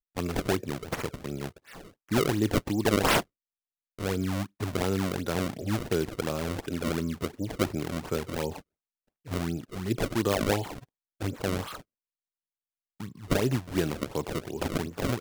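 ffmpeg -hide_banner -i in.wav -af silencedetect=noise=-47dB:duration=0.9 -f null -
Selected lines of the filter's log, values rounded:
silence_start: 11.81
silence_end: 13.00 | silence_duration: 1.19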